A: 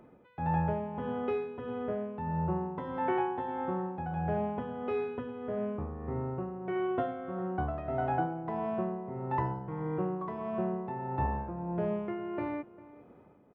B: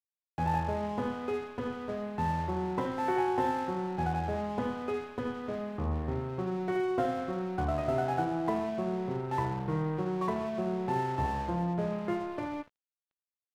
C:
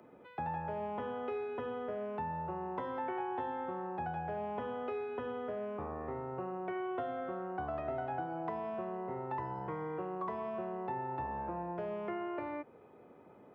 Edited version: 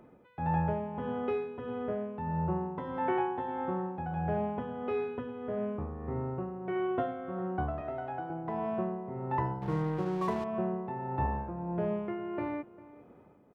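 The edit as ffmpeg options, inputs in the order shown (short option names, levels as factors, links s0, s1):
-filter_complex "[0:a]asplit=3[s0][s1][s2];[s0]atrim=end=7.812[s3];[2:a]atrim=start=7.808:end=8.302[s4];[s1]atrim=start=8.298:end=9.622[s5];[1:a]atrim=start=9.618:end=10.442[s6];[s2]atrim=start=10.438[s7];[s3][s4]acrossfade=d=0.004:c1=hsin:c2=hsin[s8];[s8][s5]acrossfade=d=0.004:c1=hsin:c2=hsin[s9];[s9][s6]acrossfade=d=0.004:c1=hsin:c2=hsin[s10];[s10][s7]acrossfade=d=0.004:c1=hsin:c2=hsin"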